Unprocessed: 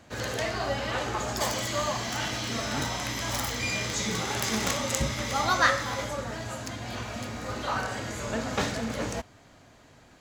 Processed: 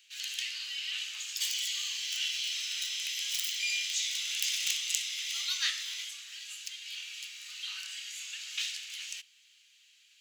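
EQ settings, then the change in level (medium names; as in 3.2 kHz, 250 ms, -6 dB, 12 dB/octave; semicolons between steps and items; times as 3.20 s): ladder high-pass 2.5 kHz, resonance 60%; tilt EQ +4 dB/octave; peaking EQ 15 kHz -6 dB 1.2 oct; 0.0 dB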